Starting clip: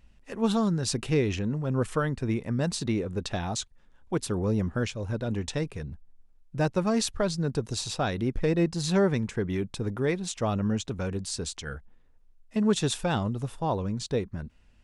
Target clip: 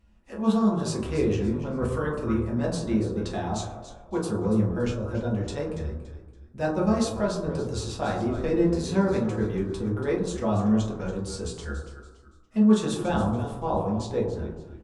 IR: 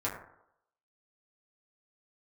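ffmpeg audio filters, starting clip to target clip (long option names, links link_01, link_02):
-filter_complex "[0:a]asplit=4[link_01][link_02][link_03][link_04];[link_02]adelay=284,afreqshift=-74,volume=-12.5dB[link_05];[link_03]adelay=568,afreqshift=-148,volume=-21.9dB[link_06];[link_04]adelay=852,afreqshift=-222,volume=-31.2dB[link_07];[link_01][link_05][link_06][link_07]amix=inputs=4:normalize=0[link_08];[1:a]atrim=start_sample=2205,asetrate=31752,aresample=44100[link_09];[link_08][link_09]afir=irnorm=-1:irlink=0,volume=-7dB"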